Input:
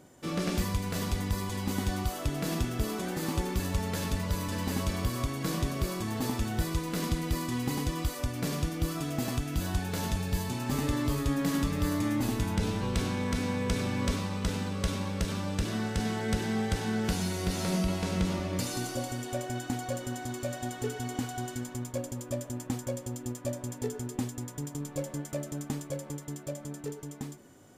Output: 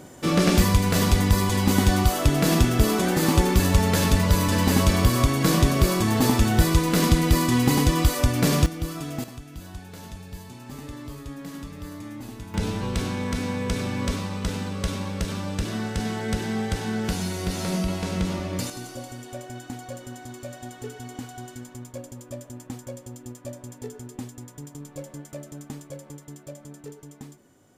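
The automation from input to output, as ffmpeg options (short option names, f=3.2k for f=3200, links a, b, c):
-af "asetnsamples=n=441:p=0,asendcmd='8.66 volume volume 1dB;9.24 volume volume -8.5dB;12.54 volume volume 3dB;18.7 volume volume -3dB',volume=11.5dB"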